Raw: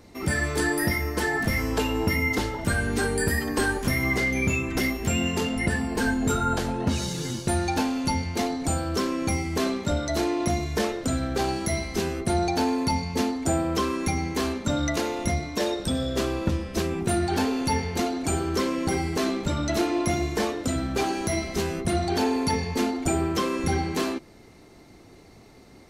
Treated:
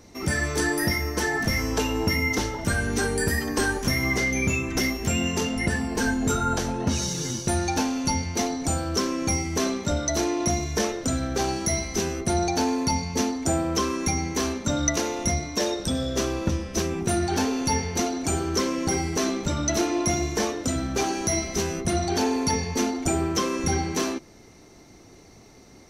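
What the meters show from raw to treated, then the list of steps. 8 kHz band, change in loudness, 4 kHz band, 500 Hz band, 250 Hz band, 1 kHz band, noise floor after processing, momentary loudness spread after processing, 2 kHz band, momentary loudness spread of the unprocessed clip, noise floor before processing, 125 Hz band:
+6.0 dB, +0.5 dB, +2.5 dB, 0.0 dB, 0.0 dB, 0.0 dB, -50 dBFS, 3 LU, 0.0 dB, 3 LU, -50 dBFS, 0.0 dB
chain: peaking EQ 5.9 kHz +12.5 dB 0.22 oct

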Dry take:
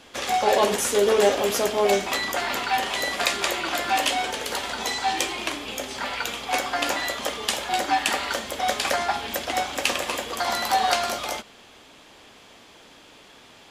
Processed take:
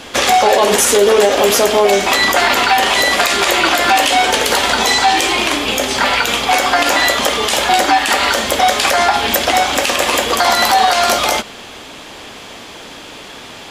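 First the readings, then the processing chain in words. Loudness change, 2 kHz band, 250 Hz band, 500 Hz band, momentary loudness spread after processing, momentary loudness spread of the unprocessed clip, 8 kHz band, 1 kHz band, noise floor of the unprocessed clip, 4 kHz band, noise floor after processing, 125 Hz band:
+12.0 dB, +13.0 dB, +11.5 dB, +10.5 dB, 21 LU, 8 LU, +12.0 dB, +12.0 dB, -50 dBFS, +12.5 dB, -34 dBFS, +11.0 dB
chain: dynamic bell 130 Hz, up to -5 dB, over -41 dBFS, Q 0.82; compression 2.5:1, threshold -24 dBFS, peak gain reduction 7.5 dB; loudness maximiser +17.5 dB; trim -1 dB

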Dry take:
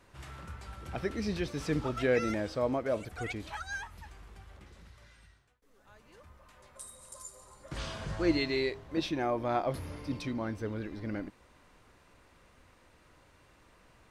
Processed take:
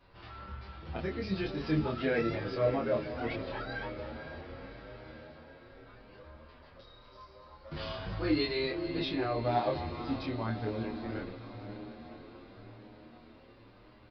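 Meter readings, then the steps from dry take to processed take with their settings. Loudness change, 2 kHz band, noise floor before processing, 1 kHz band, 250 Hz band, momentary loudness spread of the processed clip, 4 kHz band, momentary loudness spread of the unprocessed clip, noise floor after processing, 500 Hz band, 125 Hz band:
-0.5 dB, -1.0 dB, -63 dBFS, +1.0 dB, 0.0 dB, 23 LU, +1.0 dB, 18 LU, -57 dBFS, 0.0 dB, +1.5 dB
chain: peaking EQ 1.9 kHz -2.5 dB 0.77 oct; doubling 26 ms -2 dB; echo that smears into a reverb 547 ms, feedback 64%, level -10.5 dB; resampled via 11.025 kHz; endless flanger 8.7 ms +0.89 Hz; trim +1.5 dB

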